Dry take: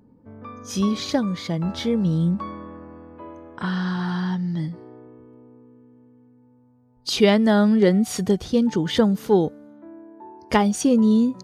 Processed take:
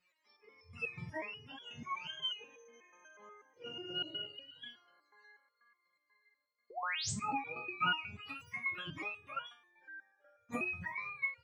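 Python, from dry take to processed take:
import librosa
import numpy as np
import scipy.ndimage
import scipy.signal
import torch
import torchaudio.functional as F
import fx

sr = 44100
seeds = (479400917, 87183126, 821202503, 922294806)

y = fx.octave_mirror(x, sr, pivot_hz=720.0)
y = fx.spec_paint(y, sr, seeds[0], shape='rise', start_s=6.7, length_s=0.41, low_hz=420.0, high_hz=8800.0, level_db=-22.0)
y = fx.resonator_held(y, sr, hz=8.2, low_hz=180.0, high_hz=480.0)
y = F.gain(torch.from_numpy(y), -2.5).numpy()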